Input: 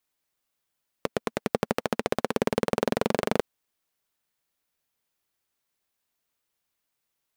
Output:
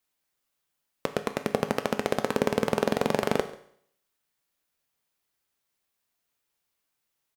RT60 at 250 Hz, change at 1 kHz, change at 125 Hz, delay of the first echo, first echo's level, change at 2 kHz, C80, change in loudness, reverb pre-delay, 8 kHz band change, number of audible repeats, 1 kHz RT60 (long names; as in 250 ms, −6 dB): 0.60 s, +0.5 dB, +0.5 dB, 139 ms, −22.0 dB, +0.5 dB, 15.0 dB, +0.5 dB, 7 ms, +0.5 dB, 1, 0.60 s